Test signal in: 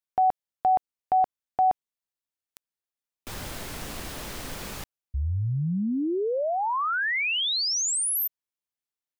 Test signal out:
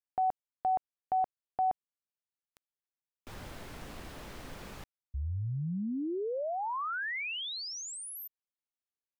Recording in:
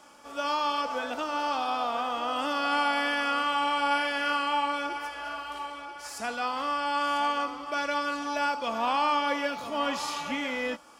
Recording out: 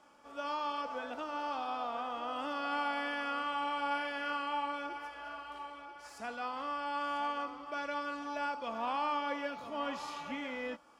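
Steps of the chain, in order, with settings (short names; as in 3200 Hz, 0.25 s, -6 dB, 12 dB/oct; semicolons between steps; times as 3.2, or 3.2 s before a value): high shelf 4000 Hz -10 dB; gain -7.5 dB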